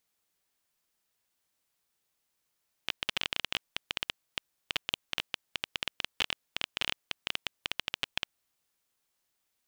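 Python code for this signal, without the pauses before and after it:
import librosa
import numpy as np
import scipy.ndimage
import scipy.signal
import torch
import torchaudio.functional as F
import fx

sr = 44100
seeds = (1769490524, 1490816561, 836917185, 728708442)

y = fx.geiger_clicks(sr, seeds[0], length_s=5.53, per_s=13.0, level_db=-11.5)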